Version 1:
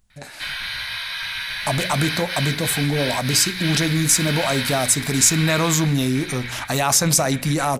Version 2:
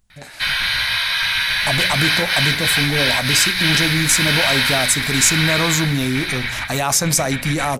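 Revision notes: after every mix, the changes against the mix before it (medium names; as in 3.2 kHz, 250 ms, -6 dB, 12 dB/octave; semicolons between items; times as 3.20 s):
background +9.0 dB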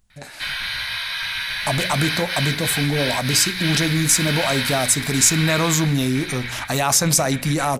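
background -7.0 dB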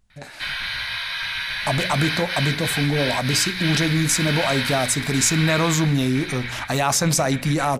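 master: add treble shelf 6.8 kHz -8.5 dB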